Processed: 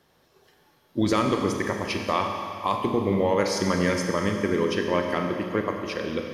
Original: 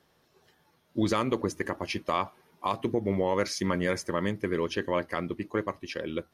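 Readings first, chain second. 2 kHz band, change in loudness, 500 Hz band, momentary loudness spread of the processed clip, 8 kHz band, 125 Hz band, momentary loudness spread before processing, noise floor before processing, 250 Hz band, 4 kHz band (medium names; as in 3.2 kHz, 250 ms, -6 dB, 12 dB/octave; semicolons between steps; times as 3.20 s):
+4.5 dB, +5.0 dB, +5.0 dB, 7 LU, +5.0 dB, +5.0 dB, 7 LU, -68 dBFS, +5.0 dB, +5.0 dB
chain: Schroeder reverb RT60 2.5 s, combs from 30 ms, DRR 3 dB; trim +3 dB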